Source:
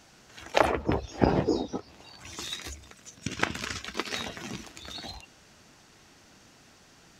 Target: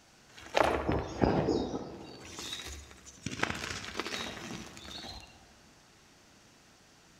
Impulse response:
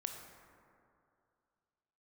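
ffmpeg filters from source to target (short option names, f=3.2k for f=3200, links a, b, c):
-filter_complex "[0:a]asplit=2[a][b];[1:a]atrim=start_sample=2205,adelay=69[c];[b][c]afir=irnorm=-1:irlink=0,volume=-4.5dB[d];[a][d]amix=inputs=2:normalize=0,volume=-4.5dB"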